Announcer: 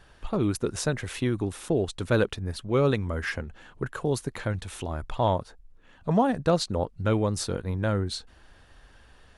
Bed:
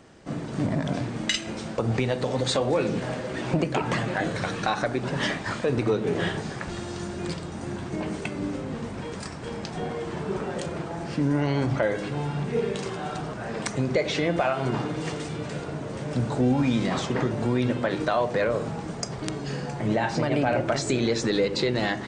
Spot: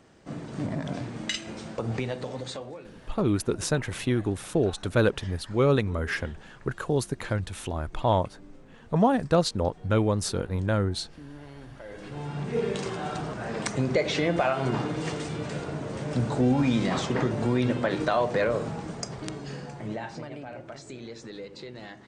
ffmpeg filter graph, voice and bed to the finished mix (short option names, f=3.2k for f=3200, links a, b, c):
-filter_complex "[0:a]adelay=2850,volume=1dB[a];[1:a]volume=15.5dB,afade=t=out:st=1.99:d=0.82:silence=0.158489,afade=t=in:st=11.83:d=0.88:silence=0.0944061,afade=t=out:st=18.4:d=2:silence=0.149624[b];[a][b]amix=inputs=2:normalize=0"